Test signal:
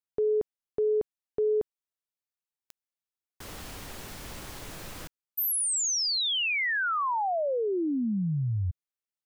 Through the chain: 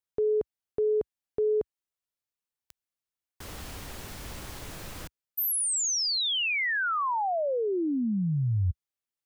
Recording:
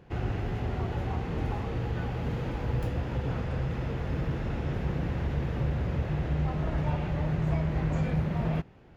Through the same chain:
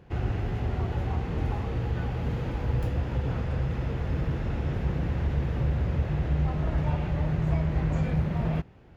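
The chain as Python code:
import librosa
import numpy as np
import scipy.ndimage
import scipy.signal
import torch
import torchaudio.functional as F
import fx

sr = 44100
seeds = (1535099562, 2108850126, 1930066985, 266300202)

y = fx.peak_eq(x, sr, hz=66.0, db=4.5, octaves=1.5)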